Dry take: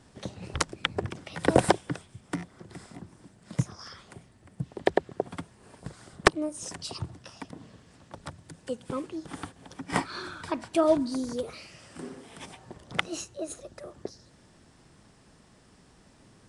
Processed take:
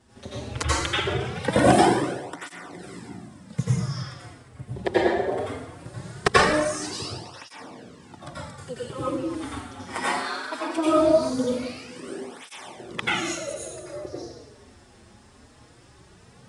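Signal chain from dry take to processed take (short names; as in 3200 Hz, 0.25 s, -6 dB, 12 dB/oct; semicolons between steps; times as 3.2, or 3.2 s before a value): 9.91–10.78 HPF 390 Hz 12 dB/oct; plate-style reverb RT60 1.1 s, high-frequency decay 0.8×, pre-delay 75 ms, DRR -9 dB; tape flanging out of phase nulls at 0.2 Hz, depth 7 ms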